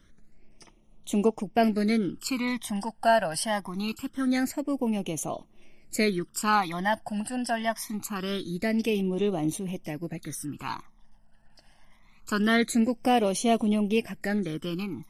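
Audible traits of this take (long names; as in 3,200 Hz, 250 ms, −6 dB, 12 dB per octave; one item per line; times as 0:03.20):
phaser sweep stages 12, 0.24 Hz, lowest notch 380–1,600 Hz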